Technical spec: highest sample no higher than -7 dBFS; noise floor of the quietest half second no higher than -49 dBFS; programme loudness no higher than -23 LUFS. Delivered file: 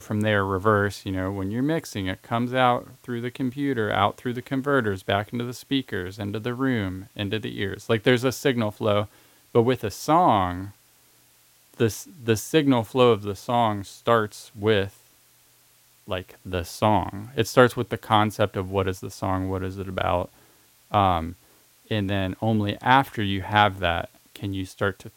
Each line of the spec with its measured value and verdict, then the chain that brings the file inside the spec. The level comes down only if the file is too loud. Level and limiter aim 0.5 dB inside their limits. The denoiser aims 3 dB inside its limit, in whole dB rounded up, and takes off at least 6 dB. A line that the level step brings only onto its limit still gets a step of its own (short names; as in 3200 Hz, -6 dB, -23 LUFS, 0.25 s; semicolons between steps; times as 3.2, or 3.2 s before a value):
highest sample -2.0 dBFS: fail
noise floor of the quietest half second -58 dBFS: OK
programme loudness -24.5 LUFS: OK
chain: limiter -7.5 dBFS